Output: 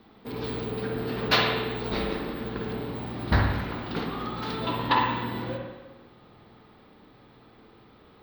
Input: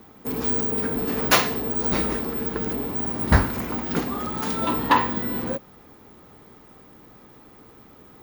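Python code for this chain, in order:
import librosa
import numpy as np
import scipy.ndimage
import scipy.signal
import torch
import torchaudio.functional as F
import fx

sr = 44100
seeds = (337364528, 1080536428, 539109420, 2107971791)

y = fx.high_shelf_res(x, sr, hz=5600.0, db=-12.0, q=3.0)
y = fx.rev_spring(y, sr, rt60_s=1.2, pass_ms=(50, 59), chirp_ms=60, drr_db=1.0)
y = y * librosa.db_to_amplitude(-6.5)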